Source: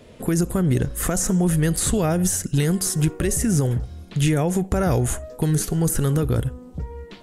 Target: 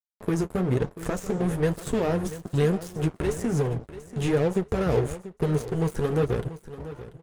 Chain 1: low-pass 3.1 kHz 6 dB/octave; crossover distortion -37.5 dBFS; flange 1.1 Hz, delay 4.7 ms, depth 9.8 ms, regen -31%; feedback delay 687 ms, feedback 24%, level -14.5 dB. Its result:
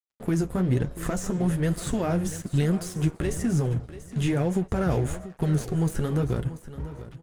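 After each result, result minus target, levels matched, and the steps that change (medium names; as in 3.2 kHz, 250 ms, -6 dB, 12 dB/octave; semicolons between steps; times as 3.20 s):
crossover distortion: distortion -8 dB; 500 Hz band -5.0 dB
change: crossover distortion -26.5 dBFS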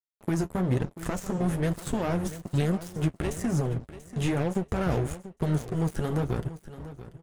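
500 Hz band -4.0 dB
add after low-pass: peaking EQ 450 Hz +10.5 dB 0.39 oct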